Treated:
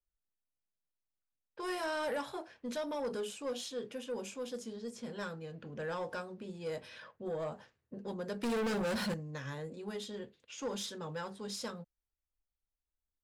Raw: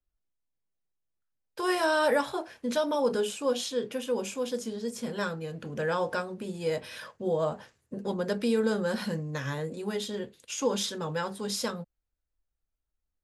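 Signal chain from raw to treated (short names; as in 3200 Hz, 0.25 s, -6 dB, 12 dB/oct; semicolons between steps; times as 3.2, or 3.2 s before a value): low-pass opened by the level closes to 1900 Hz, open at -27 dBFS; 8.43–9.14 sample leveller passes 3; soft clip -22.5 dBFS, distortion -14 dB; gain -8 dB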